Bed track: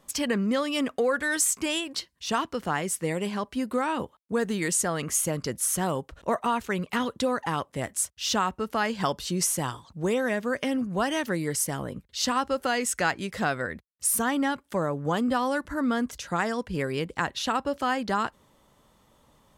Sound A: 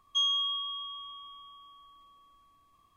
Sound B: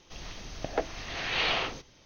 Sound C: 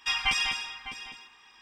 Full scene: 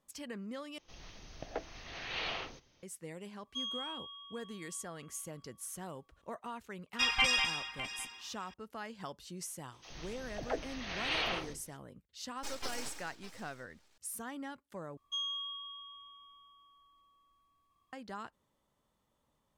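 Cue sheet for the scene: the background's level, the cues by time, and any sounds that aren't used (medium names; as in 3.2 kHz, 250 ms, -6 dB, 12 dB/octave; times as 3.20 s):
bed track -17.5 dB
0.78 s: replace with B -10 dB
3.40 s: add A -12 dB
6.93 s: add C -2 dB + rattle on loud lows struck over -48 dBFS, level -27 dBFS
9.72 s: add B -6 dB + phase dispersion lows, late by 75 ms, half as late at 420 Hz
12.37 s: add C -11.5 dB + full-wave rectifier
14.97 s: replace with A -9.5 dB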